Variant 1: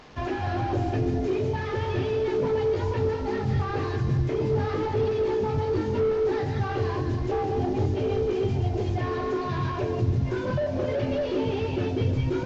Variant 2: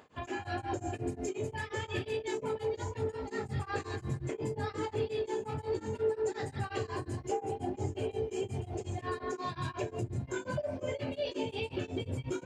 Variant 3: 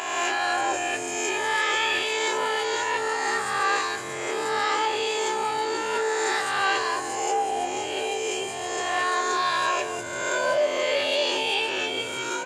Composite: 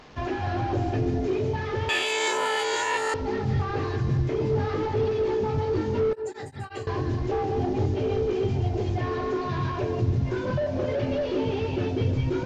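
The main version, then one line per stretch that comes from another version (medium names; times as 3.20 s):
1
1.89–3.14 s: from 3
6.13–6.87 s: from 2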